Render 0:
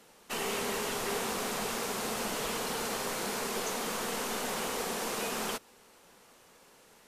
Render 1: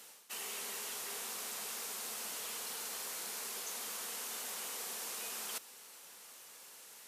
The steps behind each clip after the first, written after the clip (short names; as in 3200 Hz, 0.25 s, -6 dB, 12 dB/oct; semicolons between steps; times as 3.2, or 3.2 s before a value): tilt +3.5 dB/oct; reverse; compressor 6:1, threshold -39 dBFS, peak gain reduction 13.5 dB; reverse; gain -1.5 dB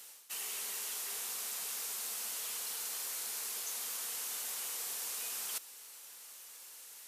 tilt +2 dB/oct; gain -3 dB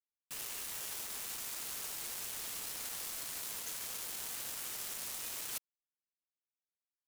bit-crush 6-bit; gain -2.5 dB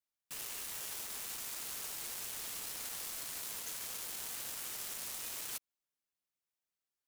limiter -35 dBFS, peak gain reduction 8 dB; gain +2 dB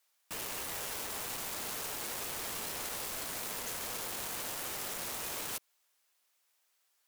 HPF 570 Hz 12 dB/oct; in parallel at -10.5 dB: sine folder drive 20 dB, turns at -30.5 dBFS; on the sum: gain +2 dB